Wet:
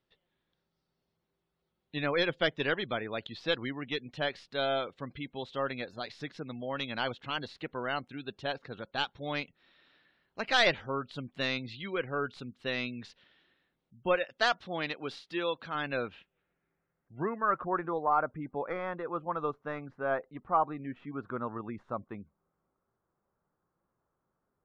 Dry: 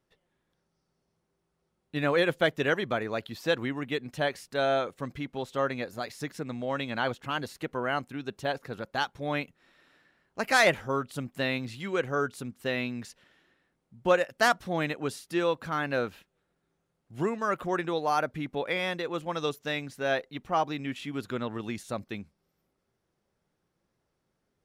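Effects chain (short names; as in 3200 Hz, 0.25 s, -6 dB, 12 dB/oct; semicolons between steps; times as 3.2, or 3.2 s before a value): tracing distortion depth 0.22 ms; 14.15–15.75 low shelf 170 Hz -8.5 dB; spectral gate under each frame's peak -30 dB strong; low-pass sweep 3800 Hz -> 1200 Hz, 15.83–17.66; gain -5 dB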